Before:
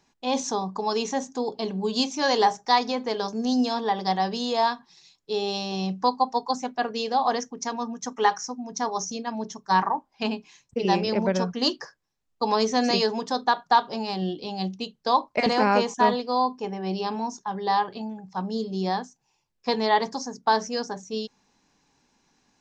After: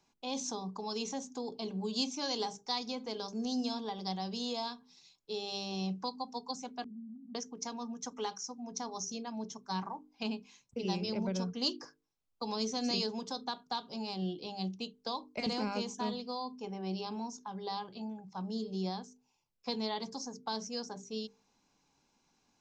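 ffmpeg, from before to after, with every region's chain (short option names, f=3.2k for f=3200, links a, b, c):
-filter_complex "[0:a]asettb=1/sr,asplit=3[a][b][c];[a]atrim=end=6.844[d];[b]atrim=start=6.84:end=7.35,asetpts=PTS-STARTPTS,afade=t=in:d=0.004:c=qsin,afade=t=out:st=0.506:d=0.004:c=qsin,aeval=exprs='val(0)+0.5*0.0266*sgn(val(0))':c=same,asuperpass=centerf=220:order=8:qfactor=2.5,acompressor=threshold=-39dB:ratio=2:attack=3.2:release=140:knee=1:detection=peak[e];[c]atrim=start=7.346[f];[d][e]acrossfade=d=0.004:c1=hsin:c2=qsin[g];[g][f]acrossfade=d=0.004:c1=qsin:c2=hsin,bandreject=f=50:t=h:w=6,bandreject=f=100:t=h:w=6,bandreject=f=150:t=h:w=6,bandreject=f=200:t=h:w=6,bandreject=f=250:t=h:w=6,bandreject=f=300:t=h:w=6,bandreject=f=350:t=h:w=6,bandreject=f=400:t=h:w=6,bandreject=f=450:t=h:w=6,acrossover=split=300|3000[h][i][j];[i]acompressor=threshold=-37dB:ratio=2.5[k];[h][k][j]amix=inputs=3:normalize=0,bandreject=f=1.8k:w=5.3,volume=-6.5dB"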